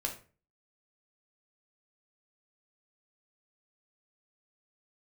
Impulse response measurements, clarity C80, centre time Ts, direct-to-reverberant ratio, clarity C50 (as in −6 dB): 14.5 dB, 16 ms, 1.5 dB, 9.5 dB